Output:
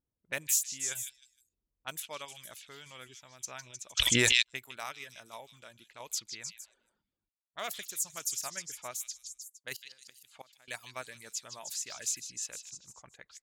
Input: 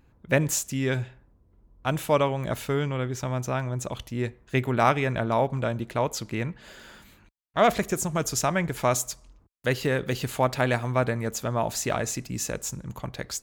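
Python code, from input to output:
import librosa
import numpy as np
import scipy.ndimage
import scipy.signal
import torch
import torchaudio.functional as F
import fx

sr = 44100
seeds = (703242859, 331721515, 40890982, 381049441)

p1 = fx.env_lowpass(x, sr, base_hz=420.0, full_db=-23.0)
p2 = scipy.signal.lfilter([1.0, -0.97], [1.0], p1)
p3 = fx.dereverb_blind(p2, sr, rt60_s=0.57)
p4 = fx.high_shelf(p3, sr, hz=2300.0, db=-8.5, at=(8.31, 9.03))
p5 = fx.level_steps(p4, sr, step_db=21)
p6 = p4 + F.gain(torch.from_numpy(p5), -1.5).numpy()
p7 = fx.tremolo_random(p6, sr, seeds[0], hz=3.5, depth_pct=55)
p8 = fx.gate_flip(p7, sr, shuts_db=-33.0, range_db=-24, at=(9.76, 10.68))
p9 = p8 + fx.echo_stepped(p8, sr, ms=154, hz=3800.0, octaves=0.7, feedback_pct=70, wet_db=-3.0, dry=0)
y = fx.env_flatten(p9, sr, amount_pct=100, at=(3.97, 4.41), fade=0.02)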